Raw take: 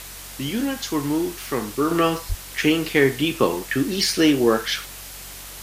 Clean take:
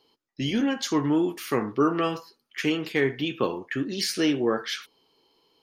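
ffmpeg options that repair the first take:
ffmpeg -i in.wav -filter_complex "[0:a]bandreject=frequency=46.8:width_type=h:width=4,bandreject=frequency=93.6:width_type=h:width=4,bandreject=frequency=140.4:width_type=h:width=4,bandreject=frequency=187.2:width_type=h:width=4,asplit=3[link_01][link_02][link_03];[link_01]afade=type=out:start_time=2.28:duration=0.02[link_04];[link_02]highpass=frequency=140:width=0.5412,highpass=frequency=140:width=1.3066,afade=type=in:start_time=2.28:duration=0.02,afade=type=out:start_time=2.4:duration=0.02[link_05];[link_03]afade=type=in:start_time=2.4:duration=0.02[link_06];[link_04][link_05][link_06]amix=inputs=3:normalize=0,afwtdn=0.014,asetnsamples=nb_out_samples=441:pad=0,asendcmd='1.91 volume volume -6.5dB',volume=0dB" out.wav

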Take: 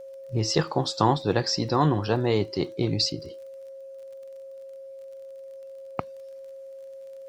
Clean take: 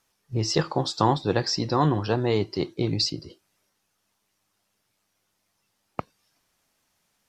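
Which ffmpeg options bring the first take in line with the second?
ffmpeg -i in.wav -af "adeclick=threshold=4,bandreject=frequency=540:width=30" out.wav

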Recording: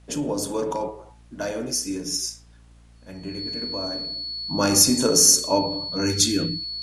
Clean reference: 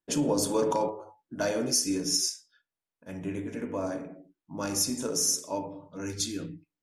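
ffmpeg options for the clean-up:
ffmpeg -i in.wav -af "bandreject=frequency=57.1:width_type=h:width=4,bandreject=frequency=114.2:width_type=h:width=4,bandreject=frequency=171.3:width_type=h:width=4,bandreject=frequency=228.4:width_type=h:width=4,bandreject=frequency=285.5:width_type=h:width=4,bandreject=frequency=4400:width=30,agate=range=-21dB:threshold=-42dB,asetnsamples=nb_out_samples=441:pad=0,asendcmd='4.45 volume volume -11.5dB',volume=0dB" out.wav

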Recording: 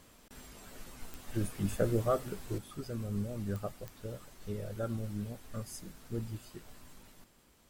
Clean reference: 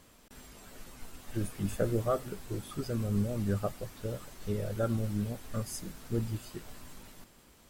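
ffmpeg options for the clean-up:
ffmpeg -i in.wav -af "adeclick=threshold=4,asetnsamples=nb_out_samples=441:pad=0,asendcmd='2.58 volume volume 5.5dB',volume=0dB" out.wav

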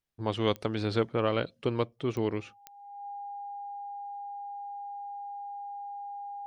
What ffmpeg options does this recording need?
ffmpeg -i in.wav -af "adeclick=threshold=4,bandreject=frequency=810:width=30" out.wav

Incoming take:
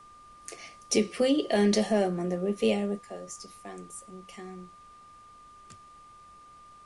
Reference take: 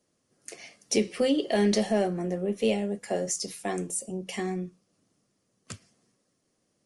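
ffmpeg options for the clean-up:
ffmpeg -i in.wav -af "bandreject=frequency=1200:width=30,agate=range=-21dB:threshold=-45dB,asetnsamples=nb_out_samples=441:pad=0,asendcmd='3.02 volume volume 12dB',volume=0dB" out.wav

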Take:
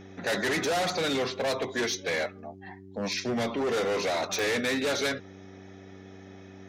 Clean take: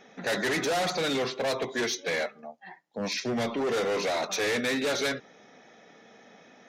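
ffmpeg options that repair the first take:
ffmpeg -i in.wav -af "adeclick=threshold=4,bandreject=frequency=95.7:width_type=h:width=4,bandreject=frequency=191.4:width_type=h:width=4,bandreject=frequency=287.1:width_type=h:width=4,bandreject=frequency=382.8:width_type=h:width=4" out.wav

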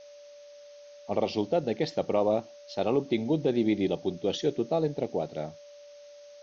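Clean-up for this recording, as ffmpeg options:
ffmpeg -i in.wav -af "bandreject=frequency=580:width=30,afftdn=noise_reduction=24:noise_floor=-50" out.wav

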